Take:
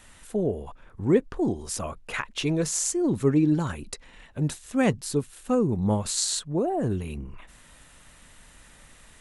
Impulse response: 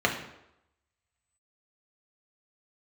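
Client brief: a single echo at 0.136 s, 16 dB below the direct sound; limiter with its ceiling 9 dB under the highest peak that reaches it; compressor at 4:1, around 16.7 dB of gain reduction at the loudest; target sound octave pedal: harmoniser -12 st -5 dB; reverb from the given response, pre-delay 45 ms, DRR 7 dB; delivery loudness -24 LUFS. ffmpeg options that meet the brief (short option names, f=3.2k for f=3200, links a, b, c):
-filter_complex "[0:a]acompressor=threshold=-37dB:ratio=4,alimiter=level_in=6dB:limit=-24dB:level=0:latency=1,volume=-6dB,aecho=1:1:136:0.158,asplit=2[a][b];[1:a]atrim=start_sample=2205,adelay=45[c];[b][c]afir=irnorm=-1:irlink=0,volume=-21dB[d];[a][d]amix=inputs=2:normalize=0,asplit=2[e][f];[f]asetrate=22050,aresample=44100,atempo=2,volume=-5dB[g];[e][g]amix=inputs=2:normalize=0,volume=15dB"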